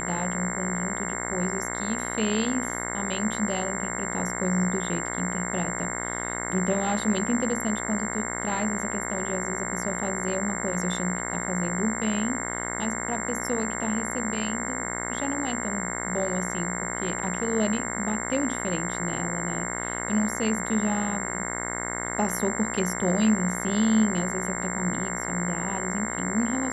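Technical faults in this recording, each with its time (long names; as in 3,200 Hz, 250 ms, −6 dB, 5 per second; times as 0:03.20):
mains buzz 60 Hz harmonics 36 −33 dBFS
whistle 7,400 Hz −33 dBFS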